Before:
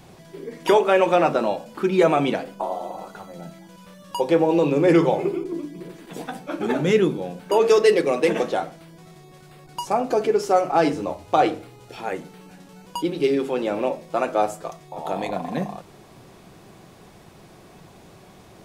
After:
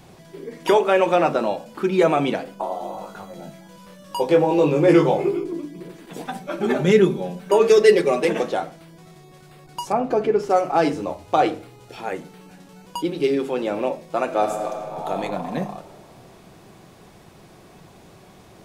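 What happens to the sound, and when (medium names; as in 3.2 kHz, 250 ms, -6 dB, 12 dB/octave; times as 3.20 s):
2.78–5.51 s: doubling 20 ms -4 dB
6.25–8.25 s: comb 5.1 ms, depth 72%
9.92–10.50 s: tone controls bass +5 dB, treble -11 dB
14.24–15.18 s: reverb throw, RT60 2.6 s, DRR 3.5 dB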